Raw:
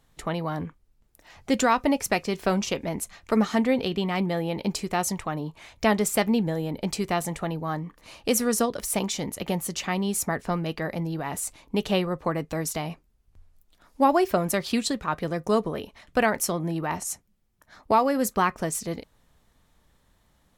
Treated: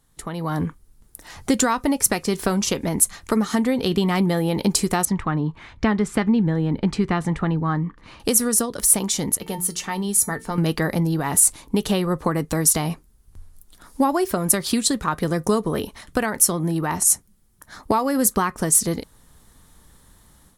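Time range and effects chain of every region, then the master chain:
5.05–8.20 s: low-pass 2.3 kHz + de-esser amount 70% + peaking EQ 600 Hz -6.5 dB 1.4 oct
9.37–10.58 s: hum notches 60/120/180/240/300/360 Hz + feedback comb 450 Hz, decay 0.19 s, mix 70%
whole clip: compression 5:1, threshold -26 dBFS; fifteen-band graphic EQ 630 Hz -6 dB, 2.5 kHz -6 dB, 10 kHz +10 dB; level rider gain up to 11.5 dB

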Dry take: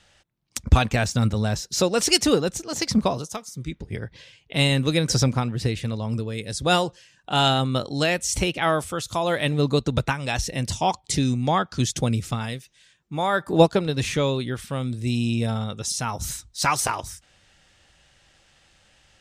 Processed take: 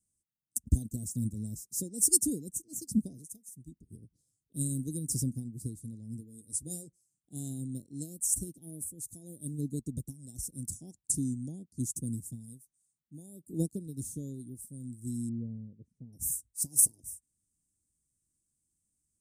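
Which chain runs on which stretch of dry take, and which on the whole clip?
6.20–6.87 s: peaking EQ 190 Hz -3 dB 1.4 oct + doubling 13 ms -7.5 dB
15.29–16.13 s: resonant low-pass 500 Hz, resonance Q 1.8 + peaking EQ 340 Hz -4 dB 0.86 oct
whole clip: elliptic band-stop 280–8800 Hz, stop band 70 dB; tilt EQ +2.5 dB/octave; upward expansion 1.5:1, over -48 dBFS

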